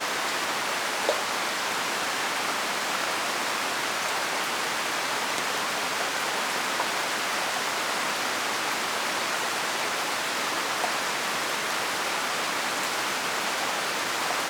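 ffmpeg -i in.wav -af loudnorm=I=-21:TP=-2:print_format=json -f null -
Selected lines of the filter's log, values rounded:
"input_i" : "-26.5",
"input_tp" : "-7.2",
"input_lra" : "0.2",
"input_thresh" : "-36.5",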